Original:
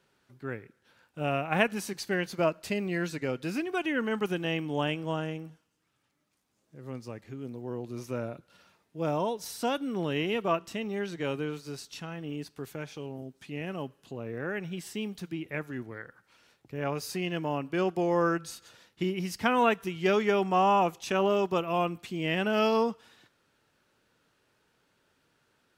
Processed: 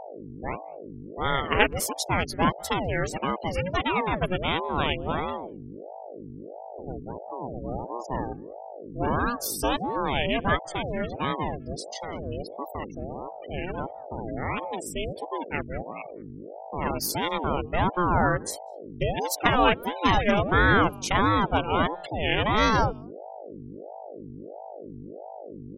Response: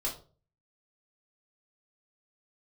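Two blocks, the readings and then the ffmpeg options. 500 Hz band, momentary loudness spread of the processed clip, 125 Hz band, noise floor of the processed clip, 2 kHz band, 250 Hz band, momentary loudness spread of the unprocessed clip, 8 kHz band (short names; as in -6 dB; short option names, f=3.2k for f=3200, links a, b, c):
+1.0 dB, 19 LU, +6.0 dB, -41 dBFS, +6.5 dB, +2.0 dB, 15 LU, +8.5 dB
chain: -filter_complex "[0:a]aemphasis=mode=production:type=50kf,afftfilt=real='re*gte(hypot(re,im),0.0251)':imag='im*gte(hypot(re,im),0.0251)':win_size=1024:overlap=0.75,asplit=2[a][b];[b]adelay=200,highpass=300,lowpass=3.4k,asoftclip=type=hard:threshold=-16dB,volume=-27dB[c];[a][c]amix=inputs=2:normalize=0,aeval=exprs='val(0)+0.00708*(sin(2*PI*50*n/s)+sin(2*PI*2*50*n/s)/2+sin(2*PI*3*50*n/s)/3+sin(2*PI*4*50*n/s)/4+sin(2*PI*5*50*n/s)/5)':c=same,aeval=exprs='val(0)*sin(2*PI*450*n/s+450*0.6/1.5*sin(2*PI*1.5*n/s))':c=same,volume=6.5dB"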